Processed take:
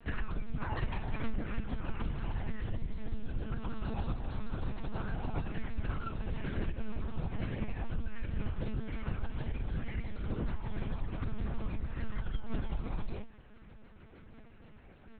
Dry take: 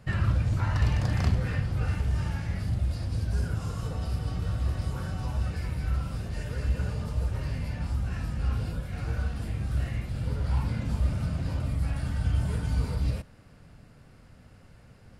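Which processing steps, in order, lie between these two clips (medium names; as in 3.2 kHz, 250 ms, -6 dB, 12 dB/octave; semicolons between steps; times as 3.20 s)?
compression 4:1, threshold -29 dBFS, peak gain reduction 9 dB; inharmonic resonator 77 Hz, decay 0.34 s, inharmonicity 0.008; monotone LPC vocoder at 8 kHz 220 Hz; vibrato with a chosen wave saw down 6.5 Hz, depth 100 cents; trim +8.5 dB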